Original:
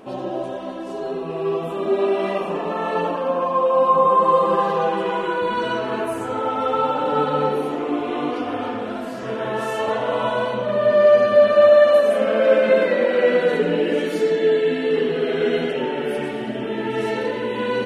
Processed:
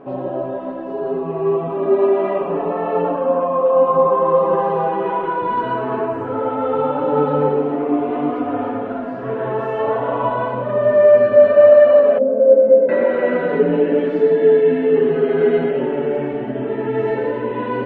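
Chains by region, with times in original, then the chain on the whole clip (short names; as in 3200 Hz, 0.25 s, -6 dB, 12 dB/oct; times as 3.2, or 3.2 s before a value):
12.18–12.89 double band-pass 360 Hz, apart 1 oct + low shelf 330 Hz +8 dB
whole clip: LPF 1400 Hz 12 dB/oct; comb 7.2 ms, depth 57%; gain +2.5 dB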